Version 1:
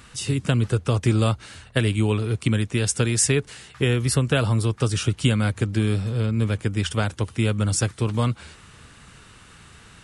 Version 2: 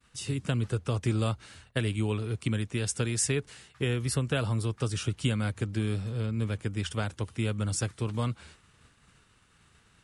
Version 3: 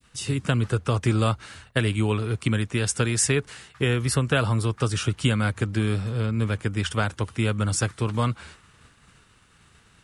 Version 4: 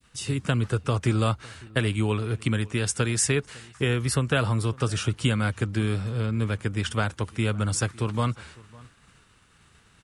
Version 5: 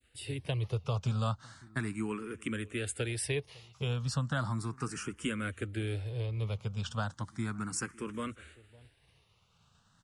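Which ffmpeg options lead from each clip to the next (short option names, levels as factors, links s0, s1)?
-af "agate=range=0.0224:threshold=0.00891:ratio=3:detection=peak,volume=0.398"
-af "adynamicequalizer=threshold=0.00398:dfrequency=1300:dqfactor=0.94:tfrequency=1300:tqfactor=0.94:attack=5:release=100:ratio=0.375:range=2.5:mode=boostabove:tftype=bell,volume=1.88"
-filter_complex "[0:a]asplit=2[s0][s1];[s1]adelay=553.9,volume=0.0708,highshelf=f=4000:g=-12.5[s2];[s0][s2]amix=inputs=2:normalize=0,volume=0.841"
-filter_complex "[0:a]asplit=2[s0][s1];[s1]afreqshift=0.35[s2];[s0][s2]amix=inputs=2:normalize=1,volume=0.473"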